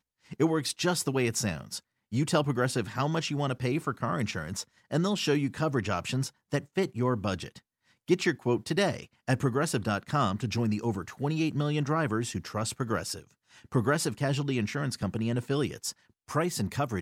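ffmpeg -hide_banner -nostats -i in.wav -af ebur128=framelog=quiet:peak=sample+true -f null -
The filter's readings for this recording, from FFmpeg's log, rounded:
Integrated loudness:
  I:         -29.9 LUFS
  Threshold: -40.2 LUFS
Loudness range:
  LRA:         1.7 LU
  Threshold: -50.2 LUFS
  LRA low:   -30.9 LUFS
  LRA high:  -29.2 LUFS
Sample peak:
  Peak:      -11.7 dBFS
True peak:
  Peak:      -11.7 dBFS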